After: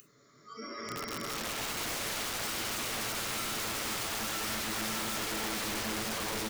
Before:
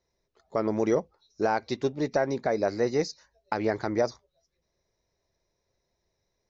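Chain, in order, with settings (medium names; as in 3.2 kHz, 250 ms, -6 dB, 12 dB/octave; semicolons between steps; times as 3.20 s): feedback delay 824 ms, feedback 30%, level -12 dB; Paulstretch 29×, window 0.25 s, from 0.46 s; spectral noise reduction 24 dB; tilt EQ +3.5 dB/octave; in parallel at 0 dB: compressor with a negative ratio -32 dBFS, ratio -0.5; on the sum: FFT filter 260 Hz 0 dB, 820 Hz -29 dB, 1.4 kHz -2 dB; hard clipper -35 dBFS, distortion -8 dB; on a send at -14.5 dB: reverberation RT60 0.85 s, pre-delay 3 ms; on the sum: integer overflow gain 36 dB; three bands compressed up and down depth 40%; trim +4 dB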